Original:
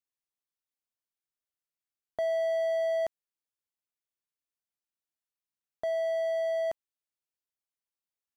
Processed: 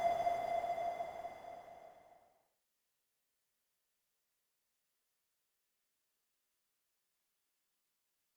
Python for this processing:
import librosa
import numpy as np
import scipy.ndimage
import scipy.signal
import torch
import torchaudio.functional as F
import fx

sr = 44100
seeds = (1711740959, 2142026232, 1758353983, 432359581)

y = fx.doppler_pass(x, sr, speed_mps=26, closest_m=24.0, pass_at_s=3.6)
y = fx.paulstretch(y, sr, seeds[0], factor=43.0, window_s=0.25, from_s=2.92)
y = y * librosa.db_to_amplitude(10.0)